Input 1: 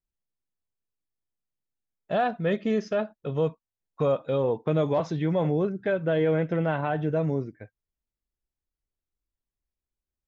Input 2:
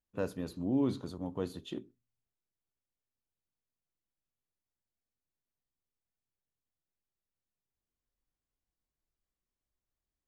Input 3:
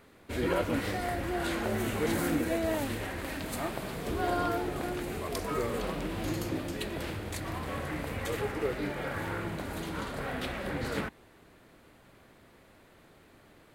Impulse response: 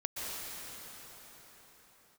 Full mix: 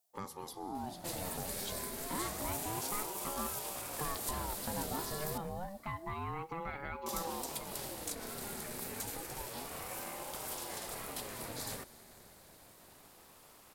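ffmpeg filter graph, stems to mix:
-filter_complex "[0:a]equalizer=f=1.4k:w=1.5:g=7.5,acompressor=threshold=-41dB:ratio=2,volume=-3dB[a];[1:a]acompressor=threshold=-46dB:ratio=2.5,volume=2dB,asplit=2[b][c];[c]volume=-11.5dB[d];[2:a]acrossover=split=130|1700|5400[e][f][g][h];[e]acompressor=threshold=-45dB:ratio=4[i];[f]acompressor=threshold=-43dB:ratio=4[j];[g]acompressor=threshold=-51dB:ratio=4[k];[h]acompressor=threshold=-52dB:ratio=4[l];[i][j][k][l]amix=inputs=4:normalize=0,adelay=750,volume=-1.5dB,asplit=3[m][n][o];[m]atrim=end=5.38,asetpts=PTS-STARTPTS,afade=t=out:st=5.376:d=0.004:c=hsin[p];[n]atrim=start=5.38:end=7.06,asetpts=PTS-STARTPTS,volume=0[q];[o]atrim=start=7.06,asetpts=PTS-STARTPTS,afade=t=in:d=0.004:c=hsin[r];[p][q][r]concat=n=3:v=0:a=1,asplit=2[s][t];[t]volume=-19dB[u];[3:a]atrim=start_sample=2205[v];[d][u]amix=inputs=2:normalize=0[w];[w][v]afir=irnorm=-1:irlink=0[x];[a][b][s][x]amix=inputs=4:normalize=0,aexciter=amount=4.9:drive=3.5:freq=4k,aeval=exprs='val(0)*sin(2*PI*500*n/s+500*0.4/0.29*sin(2*PI*0.29*n/s))':c=same"

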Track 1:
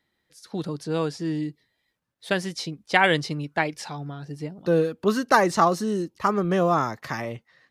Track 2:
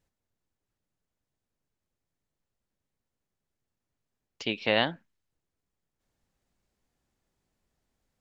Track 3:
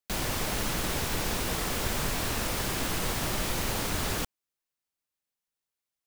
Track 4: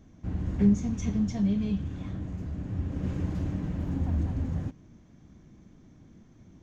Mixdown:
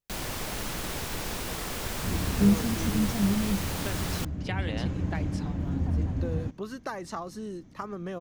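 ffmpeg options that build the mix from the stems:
-filter_complex "[0:a]acompressor=threshold=-22dB:ratio=5,adelay=1550,volume=-10.5dB[a];[1:a]volume=-15dB[b];[2:a]volume=-3.5dB[c];[3:a]adelay=1800,volume=0.5dB[d];[a][b][c][d]amix=inputs=4:normalize=0"

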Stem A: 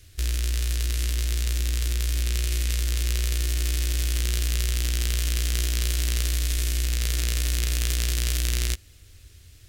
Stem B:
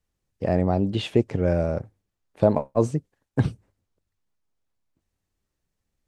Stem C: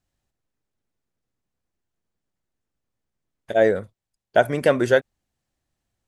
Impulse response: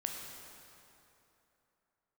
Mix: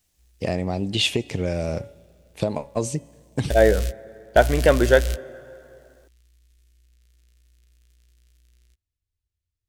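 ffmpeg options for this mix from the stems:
-filter_complex "[0:a]lowshelf=f=160:g=7,volume=-5dB[a];[1:a]bandreject=f=282.7:t=h:w=4,bandreject=f=565.4:t=h:w=4,bandreject=f=848.1:t=h:w=4,bandreject=f=1.1308k:t=h:w=4,bandreject=f=1.4135k:t=h:w=4,bandreject=f=1.6962k:t=h:w=4,bandreject=f=1.9789k:t=h:w=4,bandreject=f=2.2616k:t=h:w=4,bandreject=f=2.5443k:t=h:w=4,bandreject=f=2.827k:t=h:w=4,bandreject=f=3.1097k:t=h:w=4,bandreject=f=3.3924k:t=h:w=4,acompressor=threshold=-21dB:ratio=6,aexciter=amount=4.9:drive=3.3:freq=2.1k,volume=0.5dB,asplit=2[b][c];[c]volume=-21.5dB[d];[2:a]volume=0dB,asplit=3[e][f][g];[f]volume=-15.5dB[h];[g]apad=whole_len=427162[i];[a][i]sidechaingate=range=-35dB:threshold=-36dB:ratio=16:detection=peak[j];[3:a]atrim=start_sample=2205[k];[d][h]amix=inputs=2:normalize=0[l];[l][k]afir=irnorm=-1:irlink=0[m];[j][b][e][m]amix=inputs=4:normalize=0"

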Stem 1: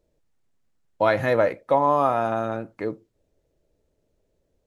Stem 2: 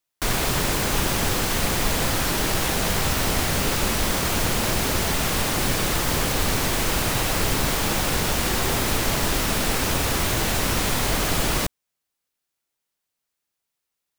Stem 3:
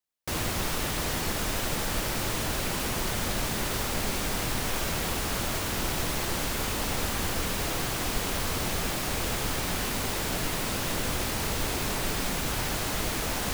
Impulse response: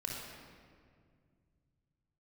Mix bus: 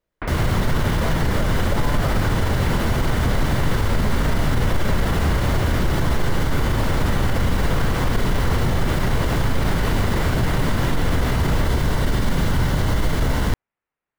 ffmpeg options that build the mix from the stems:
-filter_complex "[0:a]volume=-12dB[a];[1:a]lowpass=f=2.2k:w=0.5412,lowpass=f=2.2k:w=1.3066,alimiter=limit=-22dB:level=0:latency=1:release=90,volume=3dB[b];[2:a]bass=f=250:g=8,treble=f=4k:g=-10,bandreject=f=2.5k:w=6.7,volume=3dB,asplit=2[c][d];[d]volume=-3.5dB[e];[3:a]atrim=start_sample=2205[f];[e][f]afir=irnorm=-1:irlink=0[g];[a][b][c][g]amix=inputs=4:normalize=0,alimiter=limit=-10.5dB:level=0:latency=1:release=25"

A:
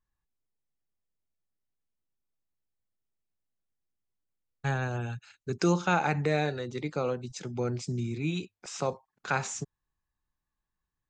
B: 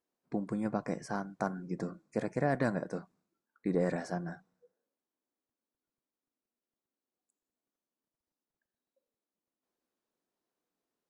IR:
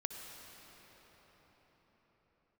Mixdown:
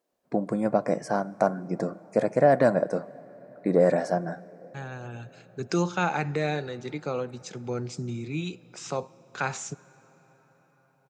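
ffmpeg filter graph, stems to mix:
-filter_complex "[0:a]adelay=100,volume=-1dB,asplit=2[a][b];[b]volume=-16.5dB[c];[1:a]equalizer=f=600:t=o:w=0.63:g=10,acontrast=83,volume=-2dB,asplit=3[d][e][f];[e]volume=-16.5dB[g];[f]apad=whole_len=493559[h];[a][h]sidechaincompress=threshold=-37dB:ratio=8:attack=10:release=1090[i];[2:a]atrim=start_sample=2205[j];[c][g]amix=inputs=2:normalize=0[k];[k][j]afir=irnorm=-1:irlink=0[l];[i][d][l]amix=inputs=3:normalize=0,highpass=100"

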